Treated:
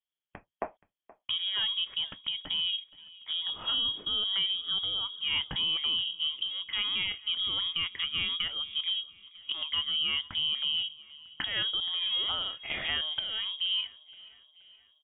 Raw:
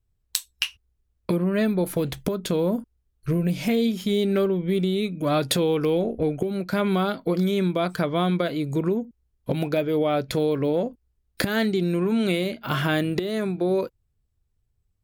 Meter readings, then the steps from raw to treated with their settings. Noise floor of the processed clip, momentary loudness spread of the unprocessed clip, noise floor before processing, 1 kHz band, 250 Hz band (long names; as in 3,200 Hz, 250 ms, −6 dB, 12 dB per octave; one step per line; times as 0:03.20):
below −85 dBFS, 7 LU, −73 dBFS, −13.5 dB, −30.5 dB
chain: high-pass filter 190 Hz 24 dB per octave
repeating echo 475 ms, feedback 52%, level −21 dB
voice inversion scrambler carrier 3,500 Hz
level −7.5 dB